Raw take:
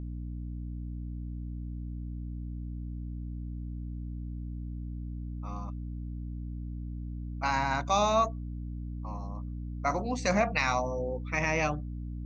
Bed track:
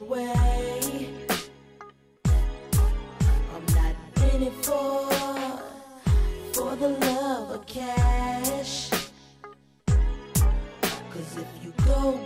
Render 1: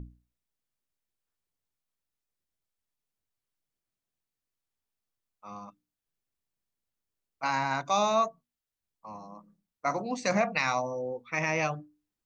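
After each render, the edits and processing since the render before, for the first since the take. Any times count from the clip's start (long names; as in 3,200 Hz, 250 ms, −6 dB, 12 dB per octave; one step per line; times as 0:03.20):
mains-hum notches 60/120/180/240/300 Hz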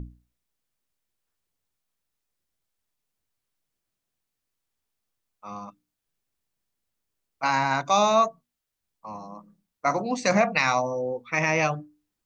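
level +5.5 dB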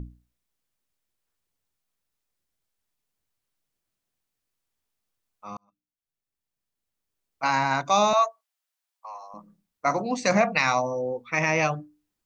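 0:05.57–0:07.46: fade in
0:08.13–0:09.34: high-pass filter 630 Hz 24 dB per octave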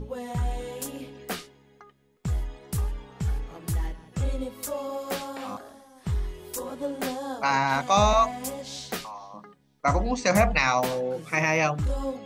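mix in bed track −6.5 dB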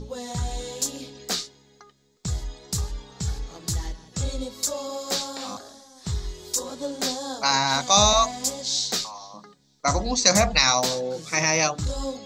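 flat-topped bell 5,300 Hz +14.5 dB 1.3 octaves
mains-hum notches 50/100/150 Hz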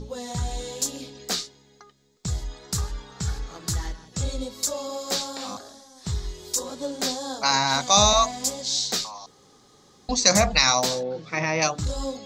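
0:02.51–0:04.06: parametric band 1,400 Hz +7 dB 0.9 octaves
0:09.26–0:10.09: fill with room tone
0:11.03–0:11.62: high-frequency loss of the air 250 metres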